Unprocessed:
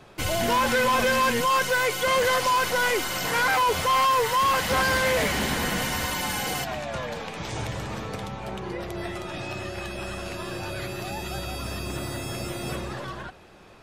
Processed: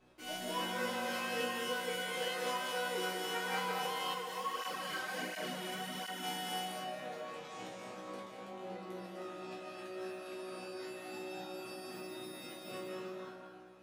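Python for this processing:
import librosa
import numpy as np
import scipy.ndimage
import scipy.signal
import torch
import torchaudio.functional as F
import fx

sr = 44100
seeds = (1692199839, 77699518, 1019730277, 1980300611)

y = scipy.signal.sosfilt(scipy.signal.butter(4, 220.0, 'highpass', fs=sr, output='sos'), x)
y = fx.low_shelf(y, sr, hz=390.0, db=7.0)
y = fx.add_hum(y, sr, base_hz=60, snr_db=30)
y = fx.resonator_bank(y, sr, root=47, chord='major', decay_s=0.51)
y = fx.tremolo_shape(y, sr, shape='triangle', hz=3.7, depth_pct=50)
y = fx.doubler(y, sr, ms=20.0, db=-11.5)
y = fx.echo_alternate(y, sr, ms=102, hz=990.0, feedback_pct=74, wet_db=-13)
y = fx.rev_freeverb(y, sr, rt60_s=1.3, hf_ratio=0.6, predelay_ms=110, drr_db=0.0)
y = fx.flanger_cancel(y, sr, hz=1.4, depth_ms=4.8, at=(4.13, 6.22), fade=0.02)
y = y * 10.0 ** (1.5 / 20.0)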